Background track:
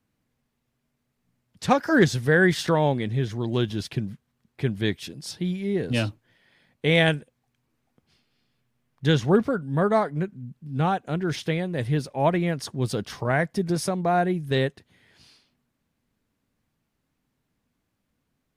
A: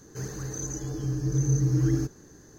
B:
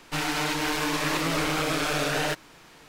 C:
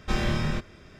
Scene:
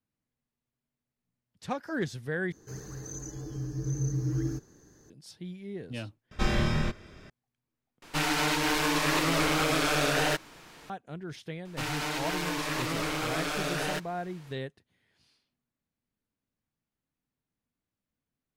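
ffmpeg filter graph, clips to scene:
ffmpeg -i bed.wav -i cue0.wav -i cue1.wav -i cue2.wav -filter_complex "[2:a]asplit=2[link_01][link_02];[0:a]volume=-13.5dB,asplit=4[link_03][link_04][link_05][link_06];[link_03]atrim=end=2.524[link_07];[1:a]atrim=end=2.58,asetpts=PTS-STARTPTS,volume=-6.5dB[link_08];[link_04]atrim=start=5.096:end=6.314[link_09];[3:a]atrim=end=0.99,asetpts=PTS-STARTPTS,volume=-0.5dB[link_10];[link_05]atrim=start=7.296:end=8.024[link_11];[link_01]atrim=end=2.88[link_12];[link_06]atrim=start=10.896[link_13];[link_02]atrim=end=2.88,asetpts=PTS-STARTPTS,volume=-5.5dB,afade=type=in:duration=0.004:curve=hsin,afade=type=out:start_time=2.876:duration=0.004:curve=hsin,adelay=11650[link_14];[link_07][link_08]acrossfade=duration=0.004:curve1=hsin:curve2=hsin[link_15];[link_15][link_09]acrossfade=duration=0.004:curve1=hsin:curve2=hsin[link_16];[link_16][link_10]acrossfade=duration=0.004:curve1=hsin:curve2=hsin[link_17];[link_17][link_11]acrossfade=duration=0.004:curve1=hsin:curve2=hsin[link_18];[link_18][link_12]acrossfade=duration=0.004:curve1=hsin:curve2=hsin[link_19];[link_19][link_13]acrossfade=duration=0.004:curve1=hsin:curve2=hsin[link_20];[link_20][link_14]amix=inputs=2:normalize=0" out.wav

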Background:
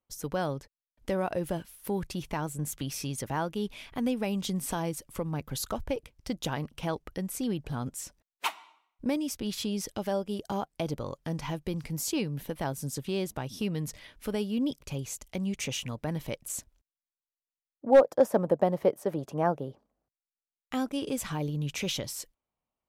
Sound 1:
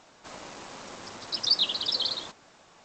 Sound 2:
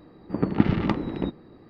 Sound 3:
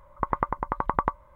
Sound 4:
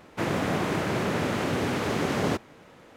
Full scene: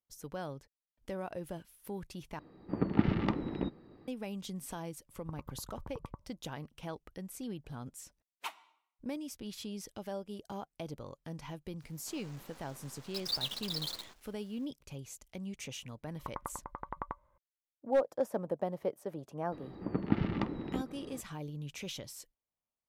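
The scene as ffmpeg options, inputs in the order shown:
ffmpeg -i bed.wav -i cue0.wav -i cue1.wav -i cue2.wav -filter_complex "[2:a]asplit=2[link_01][link_02];[3:a]asplit=2[link_03][link_04];[0:a]volume=-10dB[link_05];[link_03]bandpass=frequency=110:width_type=q:width=0.9:csg=0[link_06];[1:a]acrusher=bits=6:dc=4:mix=0:aa=0.000001[link_07];[link_02]acompressor=mode=upward:threshold=-28dB:ratio=2.5:attack=3.2:release=140:knee=2.83:detection=peak[link_08];[link_05]asplit=2[link_09][link_10];[link_09]atrim=end=2.394[link_11];[link_01]atrim=end=1.69,asetpts=PTS-STARTPTS,volume=-7dB[link_12];[link_10]atrim=start=4.076[link_13];[link_06]atrim=end=1.35,asetpts=PTS-STARTPTS,volume=-9dB,afade=type=in:duration=0.1,afade=type=out:start_time=1.25:duration=0.1,adelay=5060[link_14];[link_07]atrim=end=2.84,asetpts=PTS-STARTPTS,volume=-11dB,afade=type=in:duration=0.004:curve=hsin,afade=type=out:start_time=2.836:duration=0.004:curve=hsin,adelay=11820[link_15];[link_04]atrim=end=1.35,asetpts=PTS-STARTPTS,volume=-15.5dB,afade=type=in:duration=0.004:curve=hsin,afade=type=out:start_time=1.346:duration=0.004:curve=hsin,adelay=16030[link_16];[link_08]atrim=end=1.69,asetpts=PTS-STARTPTS,volume=-9.5dB,afade=type=in:duration=0.004:curve=hsin,afade=type=out:start_time=1.686:duration=0.004:curve=hsin,adelay=19520[link_17];[link_11][link_12]acrossfade=duration=0.004:curve1=hsin:curve2=hsin[link_18];[link_18][link_13]acrossfade=duration=0.004:curve1=hsin:curve2=hsin[link_19];[link_19][link_14][link_15][link_16][link_17]amix=inputs=5:normalize=0" out.wav

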